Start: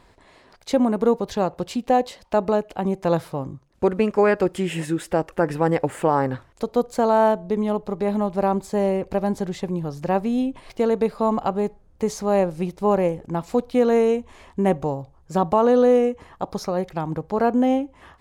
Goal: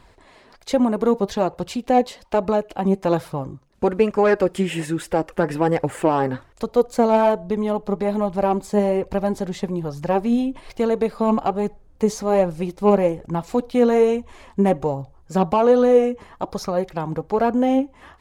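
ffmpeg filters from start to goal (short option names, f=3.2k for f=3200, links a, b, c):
-filter_complex "[0:a]flanger=delay=0.6:depth=4.6:regen=53:speed=1.2:shape=triangular,acrossover=split=670[a][b];[b]asoftclip=type=tanh:threshold=-22.5dB[c];[a][c]amix=inputs=2:normalize=0,volume=6dB"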